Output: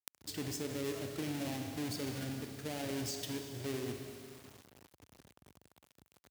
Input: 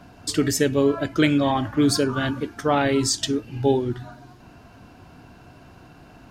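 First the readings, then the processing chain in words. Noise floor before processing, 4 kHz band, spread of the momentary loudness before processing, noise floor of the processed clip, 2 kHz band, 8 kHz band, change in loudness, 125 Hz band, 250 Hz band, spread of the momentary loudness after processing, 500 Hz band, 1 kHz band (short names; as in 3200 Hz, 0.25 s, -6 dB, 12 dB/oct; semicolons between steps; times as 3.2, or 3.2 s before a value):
-49 dBFS, -15.5 dB, 7 LU, under -85 dBFS, -18.0 dB, -15.5 dB, -18.0 dB, -15.5 dB, -18.5 dB, 11 LU, -19.0 dB, -22.0 dB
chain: half-waves squared off; bell 1100 Hz -11 dB 0.88 oct; Schroeder reverb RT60 2.2 s, combs from 30 ms, DRR 6 dB; bit-crush 6-bit; HPF 64 Hz 24 dB/oct; limiter -10.5 dBFS, peak gain reduction 8.5 dB; flipped gate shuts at -30 dBFS, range -34 dB; gain +15 dB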